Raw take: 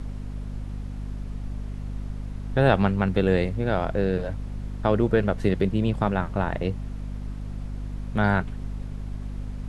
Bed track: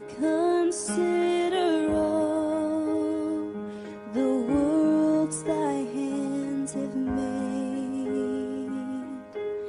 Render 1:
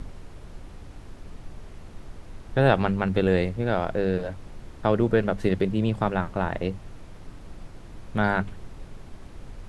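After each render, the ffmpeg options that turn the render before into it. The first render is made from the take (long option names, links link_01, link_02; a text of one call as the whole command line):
ffmpeg -i in.wav -af "bandreject=frequency=50:width_type=h:width=6,bandreject=frequency=100:width_type=h:width=6,bandreject=frequency=150:width_type=h:width=6,bandreject=frequency=200:width_type=h:width=6,bandreject=frequency=250:width_type=h:width=6" out.wav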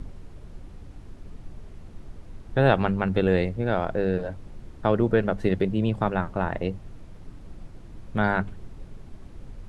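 ffmpeg -i in.wav -af "afftdn=noise_reduction=6:noise_floor=-44" out.wav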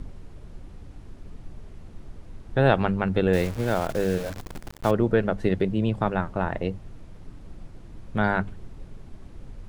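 ffmpeg -i in.wav -filter_complex "[0:a]asettb=1/sr,asplit=3[link_01][link_02][link_03];[link_01]atrim=end=3.334[link_04];[link_02]atrim=start=3.33:end=4.91,asetpts=PTS-STARTPTS,afade=type=in:duration=0.004:curve=qsin,afade=type=out:start_time=1.576:duration=0.004:curve=qsin,acrusher=bits=7:dc=4:mix=0:aa=0.000001[link_05];[link_03]atrim=start=4.906[link_06];[link_04][link_05]acrossfade=duration=0.004:curve1=hsin:curve2=qsin[link_07];[link_07][link_06]acrossfade=duration=0.004:curve1=qsin:curve2=hsin" out.wav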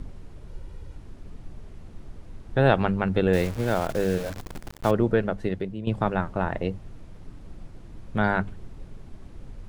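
ffmpeg -i in.wav -filter_complex "[0:a]asettb=1/sr,asplit=3[link_01][link_02][link_03];[link_01]atrim=end=0.484[link_04];[link_02]atrim=start=0.48:end=0.97,asetpts=PTS-STARTPTS,afade=type=in:duration=0.004:curve=qsin,afade=type=out:start_time=0.486:duration=0.004:curve=qsin,aecho=1:1:2.1:0.52,atrim=end_sample=21609[link_05];[link_03]atrim=start=0.966[link_06];[link_04][link_05]acrossfade=duration=0.004:curve1=hsin:curve2=qsin[link_07];[link_07][link_06]acrossfade=duration=0.004:curve1=qsin:curve2=hsin,asplit=2[link_08][link_09];[link_08]atrim=end=5.87,asetpts=PTS-STARTPTS,afade=type=out:start_time=5.05:duration=0.82:silence=0.251189[link_10];[link_09]atrim=start=5.87,asetpts=PTS-STARTPTS,afade=type=in:duration=0.004:curve=hsin:silence=0.251189[link_11];[link_10][link_11]concat=n=2:v=0:a=1" out.wav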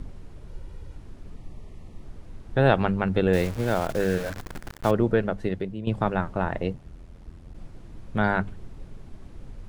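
ffmpeg -i in.wav -filter_complex "[0:a]asettb=1/sr,asplit=3[link_01][link_02][link_03];[link_01]atrim=end=1.364[link_04];[link_02]atrim=start=1.36:end=2.03,asetpts=PTS-STARTPTS,afade=type=in:duration=0.004:curve=qsin,afade=type=out:start_time=0.666:duration=0.004:curve=qsin,asuperstop=centerf=1500:order=20:qfactor=4[link_05];[link_03]atrim=start=2.026[link_06];[link_04][link_05]acrossfade=duration=0.004:curve1=hsin:curve2=qsin[link_07];[link_07][link_06]acrossfade=duration=0.004:curve1=qsin:curve2=hsin,asettb=1/sr,asplit=3[link_08][link_09][link_10];[link_08]atrim=end=4.004[link_11];[link_09]atrim=start=4:end=4.84,asetpts=PTS-STARTPTS,afade=type=in:duration=0.004:curve=qsin,afade=type=out:start_time=0.836:duration=0.004:curve=qsin,equalizer=frequency=1600:width_type=o:width=0.77:gain=5.5[link_12];[link_10]atrim=start=4.836[link_13];[link_11][link_12]acrossfade=duration=0.004:curve1=hsin:curve2=qsin[link_14];[link_14][link_13]acrossfade=duration=0.004:curve1=qsin:curve2=hsin,asplit=3[link_15][link_16][link_17];[link_15]afade=type=out:start_time=6.73:duration=0.02[link_18];[link_16]aeval=exprs='val(0)*sin(2*PI*42*n/s)':channel_layout=same,afade=type=in:start_time=6.73:duration=0.02,afade=type=out:start_time=7.53:duration=0.02[link_19];[link_17]afade=type=in:start_time=7.53:duration=0.02[link_20];[link_18][link_19][link_20]amix=inputs=3:normalize=0" out.wav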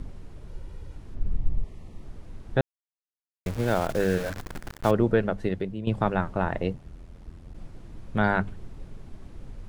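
ffmpeg -i in.wav -filter_complex "[0:a]asplit=3[link_01][link_02][link_03];[link_01]afade=type=out:start_time=1.14:duration=0.02[link_04];[link_02]aemphasis=mode=reproduction:type=bsi,afade=type=in:start_time=1.14:duration=0.02,afade=type=out:start_time=1.63:duration=0.02[link_05];[link_03]afade=type=in:start_time=1.63:duration=0.02[link_06];[link_04][link_05][link_06]amix=inputs=3:normalize=0,asplit=3[link_07][link_08][link_09];[link_07]atrim=end=2.61,asetpts=PTS-STARTPTS,afade=type=out:start_time=2.606:duration=0.004:curve=hsin[link_10];[link_08]atrim=start=2.61:end=3.46,asetpts=PTS-STARTPTS,volume=0[link_11];[link_09]atrim=start=3.46,asetpts=PTS-STARTPTS,afade=type=in:duration=0.004:curve=hsin[link_12];[link_10][link_11][link_12]concat=n=3:v=0:a=1" out.wav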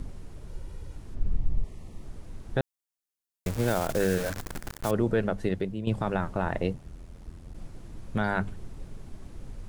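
ffmpeg -i in.wav -filter_complex "[0:a]acrossover=split=5700[link_01][link_02];[link_01]alimiter=limit=-14.5dB:level=0:latency=1:release=37[link_03];[link_02]acontrast=69[link_04];[link_03][link_04]amix=inputs=2:normalize=0" out.wav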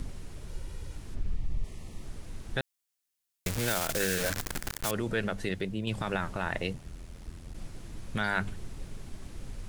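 ffmpeg -i in.wav -filter_complex "[0:a]acrossover=split=1600[link_01][link_02];[link_01]alimiter=limit=-22.5dB:level=0:latency=1:release=77[link_03];[link_02]acontrast=65[link_04];[link_03][link_04]amix=inputs=2:normalize=0" out.wav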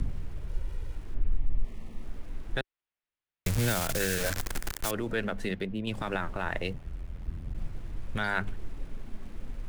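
ffmpeg -i in.wav -filter_complex "[0:a]acrossover=split=240|3200[link_01][link_02][link_03];[link_01]aphaser=in_gain=1:out_gain=1:delay=4.6:decay=0.59:speed=0.27:type=triangular[link_04];[link_03]aeval=exprs='sgn(val(0))*max(abs(val(0))-0.00106,0)':channel_layout=same[link_05];[link_04][link_02][link_05]amix=inputs=3:normalize=0" out.wav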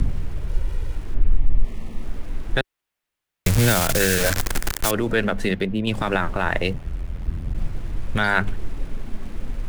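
ffmpeg -i in.wav -af "volume=10dB" out.wav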